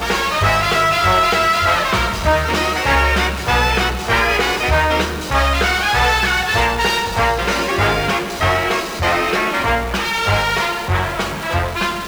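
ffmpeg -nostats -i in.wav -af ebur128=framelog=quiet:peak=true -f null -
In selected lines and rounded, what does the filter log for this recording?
Integrated loudness:
  I:         -16.1 LUFS
  Threshold: -26.1 LUFS
Loudness range:
  LRA:         2.4 LU
  Threshold: -36.1 LUFS
  LRA low:   -17.4 LUFS
  LRA high:  -15.0 LUFS
True peak:
  Peak:       -6.2 dBFS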